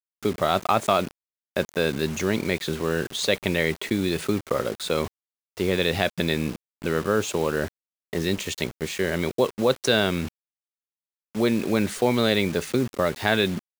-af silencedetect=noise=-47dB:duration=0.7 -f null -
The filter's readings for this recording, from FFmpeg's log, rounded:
silence_start: 10.28
silence_end: 11.35 | silence_duration: 1.06